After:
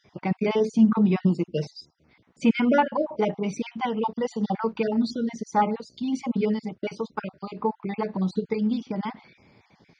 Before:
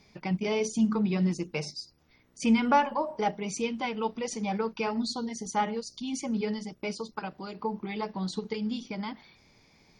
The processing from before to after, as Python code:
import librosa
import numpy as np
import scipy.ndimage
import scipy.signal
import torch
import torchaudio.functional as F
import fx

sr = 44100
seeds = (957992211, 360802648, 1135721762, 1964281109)

y = fx.spec_dropout(x, sr, seeds[0], share_pct=28)
y = scipy.signal.sosfilt(scipy.signal.butter(2, 86.0, 'highpass', fs=sr, output='sos'), y)
y = fx.spacing_loss(y, sr, db_at_10k=23)
y = y * librosa.db_to_amplitude(8.0)